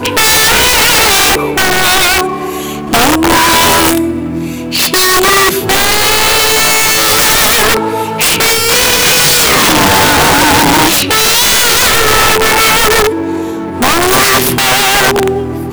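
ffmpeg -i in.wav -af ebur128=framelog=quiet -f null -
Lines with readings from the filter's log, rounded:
Integrated loudness:
  I:          -7.1 LUFS
  Threshold: -17.2 LUFS
Loudness range:
  LRA:         2.7 LU
  Threshold: -27.2 LUFS
  LRA low:    -8.7 LUFS
  LRA high:   -6.0 LUFS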